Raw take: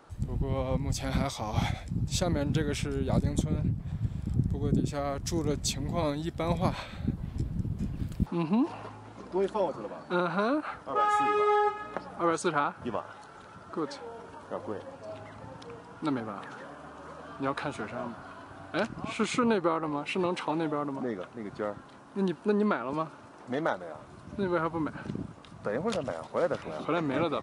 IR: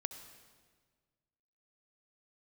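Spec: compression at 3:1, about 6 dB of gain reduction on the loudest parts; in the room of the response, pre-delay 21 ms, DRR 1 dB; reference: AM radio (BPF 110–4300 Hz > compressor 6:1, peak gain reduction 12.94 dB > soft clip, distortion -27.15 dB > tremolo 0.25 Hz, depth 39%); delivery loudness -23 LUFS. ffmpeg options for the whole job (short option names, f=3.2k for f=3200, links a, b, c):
-filter_complex "[0:a]acompressor=threshold=-30dB:ratio=3,asplit=2[a][b];[1:a]atrim=start_sample=2205,adelay=21[c];[b][c]afir=irnorm=-1:irlink=0,volume=0dB[d];[a][d]amix=inputs=2:normalize=0,highpass=110,lowpass=4.3k,acompressor=threshold=-38dB:ratio=6,asoftclip=threshold=-28dB,tremolo=f=0.25:d=0.39,volume=21.5dB"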